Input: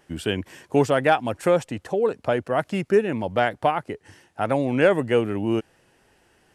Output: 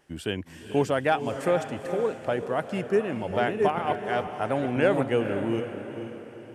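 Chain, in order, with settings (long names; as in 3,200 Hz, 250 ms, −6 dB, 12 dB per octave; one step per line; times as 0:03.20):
0:02.81–0:05.04: delay that plays each chunk backwards 489 ms, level −2 dB
feedback delay with all-pass diffusion 465 ms, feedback 44%, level −9 dB
level −5 dB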